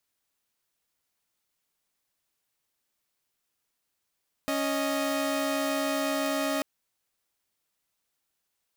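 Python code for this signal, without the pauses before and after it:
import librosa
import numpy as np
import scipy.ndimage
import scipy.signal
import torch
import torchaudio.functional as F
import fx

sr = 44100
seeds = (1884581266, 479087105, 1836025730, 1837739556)

y = fx.chord(sr, length_s=2.14, notes=(61, 75), wave='saw', level_db=-26.5)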